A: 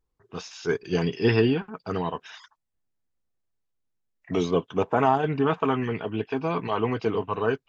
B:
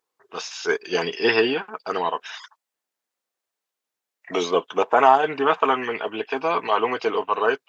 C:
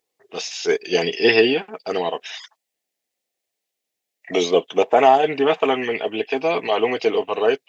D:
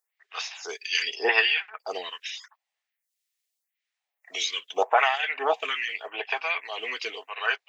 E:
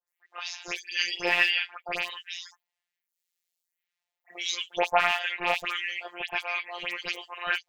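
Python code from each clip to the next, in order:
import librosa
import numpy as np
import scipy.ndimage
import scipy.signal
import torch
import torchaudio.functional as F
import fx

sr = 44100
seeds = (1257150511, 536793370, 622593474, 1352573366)

y1 = scipy.signal.sosfilt(scipy.signal.butter(2, 540.0, 'highpass', fs=sr, output='sos'), x)
y1 = F.gain(torch.from_numpy(y1), 8.0).numpy()
y2 = fx.band_shelf(y1, sr, hz=1200.0, db=-11.5, octaves=1.0)
y2 = F.gain(torch.from_numpy(y2), 4.5).numpy()
y3 = fx.filter_lfo_highpass(y2, sr, shape='sine', hz=1.4, low_hz=870.0, high_hz=2000.0, q=1.9)
y3 = fx.stagger_phaser(y3, sr, hz=0.83)
y4 = fx.rattle_buzz(y3, sr, strikes_db=-47.0, level_db=-12.0)
y4 = fx.dispersion(y4, sr, late='highs', ms=85.0, hz=2800.0)
y4 = fx.robotise(y4, sr, hz=175.0)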